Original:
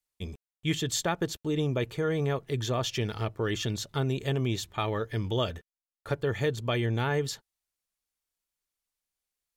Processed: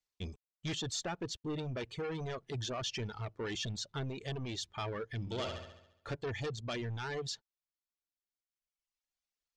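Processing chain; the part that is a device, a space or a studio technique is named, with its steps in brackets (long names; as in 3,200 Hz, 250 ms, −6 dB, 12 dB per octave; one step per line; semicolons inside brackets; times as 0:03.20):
overdriven synthesiser ladder filter (soft clipping −31 dBFS, distortion −8 dB; transistor ladder low-pass 7,500 Hz, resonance 25%)
reverb reduction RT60 1.7 s
0:05.20–0:06.14: flutter between parallel walls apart 11.9 metres, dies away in 0.81 s
level +4 dB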